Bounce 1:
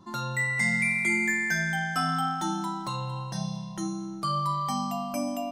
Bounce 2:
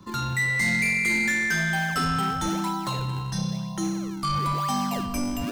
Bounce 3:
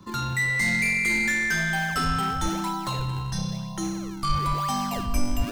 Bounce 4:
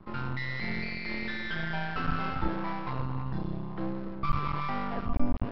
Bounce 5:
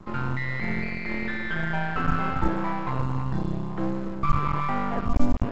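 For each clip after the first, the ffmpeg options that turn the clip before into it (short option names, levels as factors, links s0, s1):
-filter_complex "[0:a]acrossover=split=370|900|6400[s0][s1][s2][s3];[s1]acrusher=samples=42:mix=1:aa=0.000001:lfo=1:lforange=67.2:lforate=1[s4];[s0][s4][s2][s3]amix=inputs=4:normalize=0,asoftclip=type=tanh:threshold=0.0562,volume=2"
-af "asubboost=boost=5:cutoff=81"
-af "lowpass=1300,aresample=11025,aeval=exprs='max(val(0),0)':c=same,aresample=44100"
-filter_complex "[0:a]acrossover=split=2600[s0][s1];[s1]acompressor=threshold=0.00112:ratio=4:attack=1:release=60[s2];[s0][s2]amix=inputs=2:normalize=0,volume=2" -ar 16000 -c:a pcm_alaw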